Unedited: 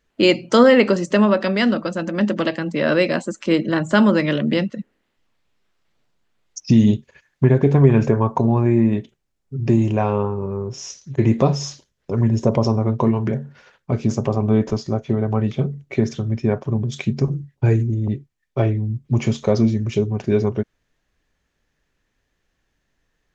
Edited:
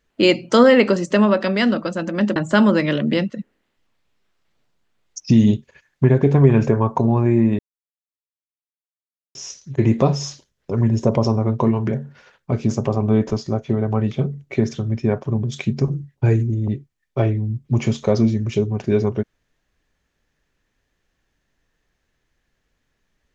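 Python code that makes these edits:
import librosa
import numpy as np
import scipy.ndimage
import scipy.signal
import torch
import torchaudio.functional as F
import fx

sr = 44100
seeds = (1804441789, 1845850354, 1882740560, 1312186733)

y = fx.edit(x, sr, fx.cut(start_s=2.36, length_s=1.4),
    fx.silence(start_s=8.99, length_s=1.76), tone=tone)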